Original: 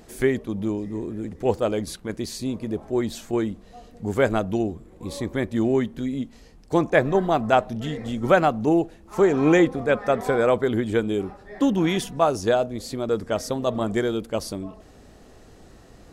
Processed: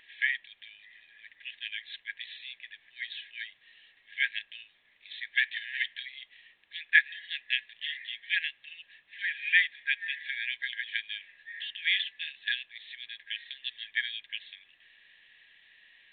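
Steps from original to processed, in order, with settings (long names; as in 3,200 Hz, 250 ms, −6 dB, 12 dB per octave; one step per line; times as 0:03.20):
0:05.37–0:06.03: leveller curve on the samples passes 2
linear-phase brick-wall high-pass 1,600 Hz
level +5 dB
A-law companding 64 kbit/s 8,000 Hz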